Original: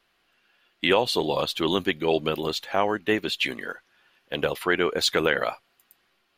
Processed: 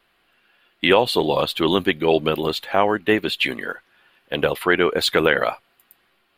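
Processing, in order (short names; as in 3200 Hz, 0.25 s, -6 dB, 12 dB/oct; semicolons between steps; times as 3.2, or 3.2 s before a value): bell 6000 Hz -11 dB 0.64 oct; gain +5.5 dB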